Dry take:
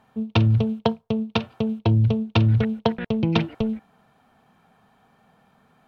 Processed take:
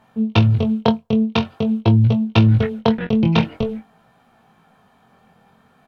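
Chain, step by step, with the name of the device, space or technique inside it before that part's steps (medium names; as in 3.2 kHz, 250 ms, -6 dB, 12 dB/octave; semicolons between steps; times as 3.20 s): double-tracked vocal (doubling 23 ms -11.5 dB; chorus 0.47 Hz, delay 17 ms, depth 6.4 ms); trim +7 dB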